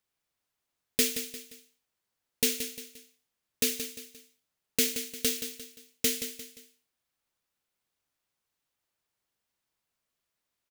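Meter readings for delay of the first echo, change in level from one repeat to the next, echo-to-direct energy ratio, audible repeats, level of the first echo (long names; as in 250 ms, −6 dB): 175 ms, −8.0 dB, −9.0 dB, 3, −9.5 dB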